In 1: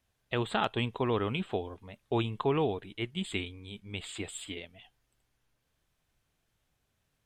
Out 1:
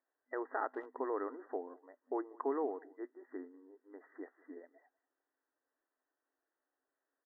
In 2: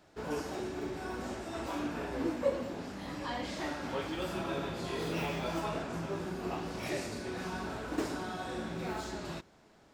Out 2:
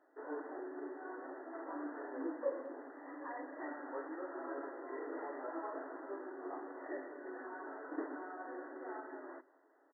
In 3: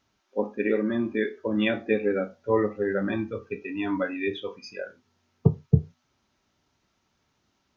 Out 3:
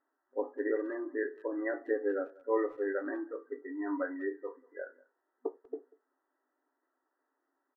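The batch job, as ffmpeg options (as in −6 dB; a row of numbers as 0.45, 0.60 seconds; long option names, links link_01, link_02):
-filter_complex "[0:a]afftfilt=real='re*between(b*sr/4096,250,2000)':imag='im*between(b*sr/4096,250,2000)':win_size=4096:overlap=0.75,asplit=2[link_01][link_02];[link_02]adelay=190,highpass=300,lowpass=3400,asoftclip=type=hard:threshold=-20.5dB,volume=-23dB[link_03];[link_01][link_03]amix=inputs=2:normalize=0,volume=-6.5dB"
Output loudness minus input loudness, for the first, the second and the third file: −8.0, −8.0, −9.0 LU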